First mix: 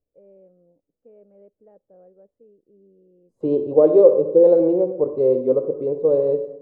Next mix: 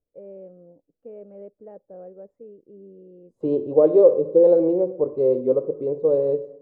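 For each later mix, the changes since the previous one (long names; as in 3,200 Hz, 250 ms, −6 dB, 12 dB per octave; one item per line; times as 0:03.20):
first voice +9.5 dB
second voice: send −6.5 dB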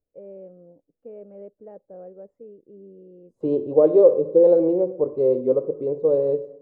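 nothing changed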